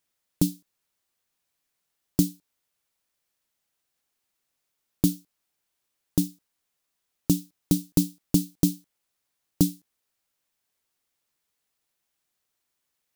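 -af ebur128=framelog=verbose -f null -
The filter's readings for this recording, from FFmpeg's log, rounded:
Integrated loudness:
  I:         -27.2 LUFS
  Threshold: -38.0 LUFS
Loudness range:
  LRA:         7.6 LU
  Threshold: -51.5 LUFS
  LRA low:   -35.6 LUFS
  LRA high:  -27.9 LUFS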